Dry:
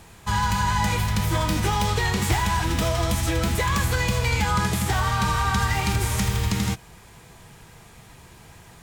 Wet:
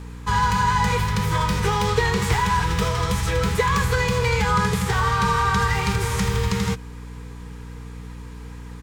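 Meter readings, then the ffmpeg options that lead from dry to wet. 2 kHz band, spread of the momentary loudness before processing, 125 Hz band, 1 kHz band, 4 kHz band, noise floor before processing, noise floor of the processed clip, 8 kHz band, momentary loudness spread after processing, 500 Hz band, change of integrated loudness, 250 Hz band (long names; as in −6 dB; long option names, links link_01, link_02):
+2.5 dB, 2 LU, +1.0 dB, +3.5 dB, 0.0 dB, −49 dBFS, −37 dBFS, −2.0 dB, 18 LU, +5.0 dB, +2.0 dB, +1.0 dB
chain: -af "firequalizer=gain_entry='entry(110,0);entry(180,6);entry(280,-20);entry(440,12);entry(650,-9);entry(940,5);entry(2800,1);entry(4800,3)':delay=0.05:min_phase=1,aeval=exprs='val(0)+0.0178*(sin(2*PI*60*n/s)+sin(2*PI*2*60*n/s)/2+sin(2*PI*3*60*n/s)/3+sin(2*PI*4*60*n/s)/4+sin(2*PI*5*60*n/s)/5)':channel_layout=same,highshelf=frequency=7500:gain=-10"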